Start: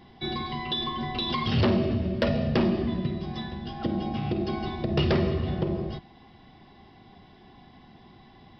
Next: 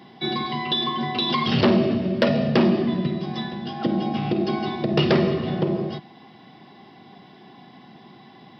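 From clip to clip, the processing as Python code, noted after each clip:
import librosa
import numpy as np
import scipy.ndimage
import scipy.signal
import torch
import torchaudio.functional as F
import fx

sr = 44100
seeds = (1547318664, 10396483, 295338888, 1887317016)

y = scipy.signal.sosfilt(scipy.signal.butter(4, 140.0, 'highpass', fs=sr, output='sos'), x)
y = y * 10.0 ** (6.0 / 20.0)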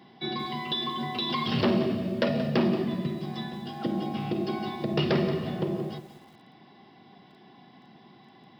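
y = fx.echo_crushed(x, sr, ms=178, feedback_pct=35, bits=7, wet_db=-12.5)
y = y * 10.0 ** (-6.5 / 20.0)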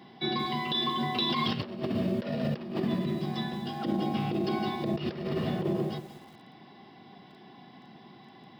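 y = fx.over_compress(x, sr, threshold_db=-29.0, ratio=-0.5)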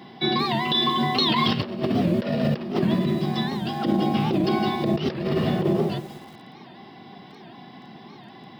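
y = fx.record_warp(x, sr, rpm=78.0, depth_cents=160.0)
y = y * 10.0 ** (7.5 / 20.0)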